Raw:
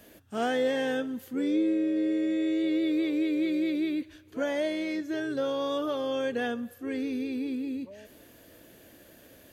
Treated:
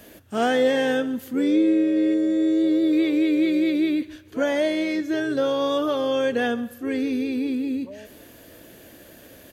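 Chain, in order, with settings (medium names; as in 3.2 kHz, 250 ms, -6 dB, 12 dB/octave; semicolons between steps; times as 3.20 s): 2.14–2.93 s: peaking EQ 2.5 kHz -14 dB 0.72 oct; delay 141 ms -20.5 dB; trim +7 dB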